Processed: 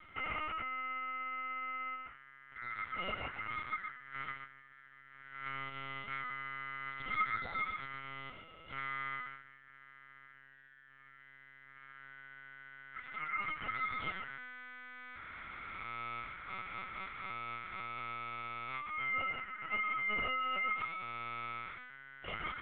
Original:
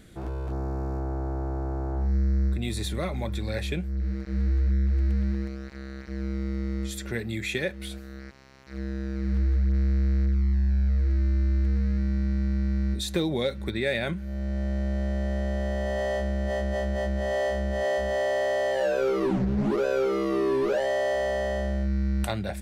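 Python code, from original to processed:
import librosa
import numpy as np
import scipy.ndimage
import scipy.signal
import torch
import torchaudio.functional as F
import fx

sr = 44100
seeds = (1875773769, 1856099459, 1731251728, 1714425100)

y = fx.over_compress(x, sr, threshold_db=-32.0, ratio=-1.0)
y = fx.double_bandpass(y, sr, hz=700.0, octaves=1.4)
y = y * np.sin(2.0 * np.pi * 1700.0 * np.arange(len(y)) / sr)
y = fx.air_absorb(y, sr, metres=140.0)
y = y + 10.0 ** (-6.0 / 20.0) * np.pad(y, (int(124 * sr / 1000.0), 0))[:len(y)]
y = fx.lpc_vocoder(y, sr, seeds[0], excitation='pitch_kept', order=10)
y = y * librosa.db_to_amplitude(7.5)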